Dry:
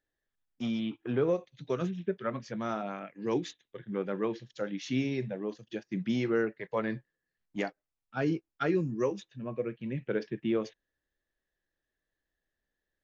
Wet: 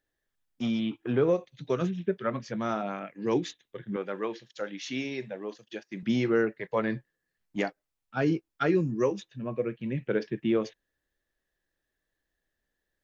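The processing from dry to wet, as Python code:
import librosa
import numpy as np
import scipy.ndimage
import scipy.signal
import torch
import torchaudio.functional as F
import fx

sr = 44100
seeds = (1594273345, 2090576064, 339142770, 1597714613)

y = fx.highpass(x, sr, hz=560.0, slope=6, at=(3.96, 6.03))
y = F.gain(torch.from_numpy(y), 3.5).numpy()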